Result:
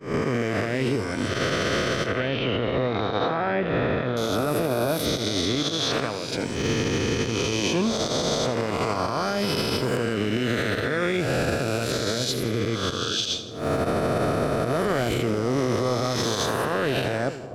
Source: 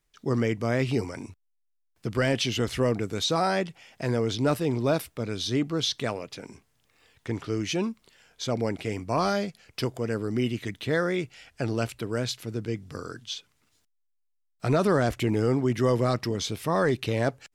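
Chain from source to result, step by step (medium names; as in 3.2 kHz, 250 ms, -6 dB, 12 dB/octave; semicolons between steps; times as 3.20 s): reverse spectral sustain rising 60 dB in 2.67 s; recorder AGC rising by 31 dB/s; expander -18 dBFS; 2.06–4.17 s: low-pass 2.8 kHz 24 dB/octave; compression, threshold -19 dBFS, peak gain reduction 7.5 dB; peak limiter -15 dBFS, peak gain reduction 11.5 dB; two-band feedback delay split 900 Hz, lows 465 ms, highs 82 ms, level -12 dB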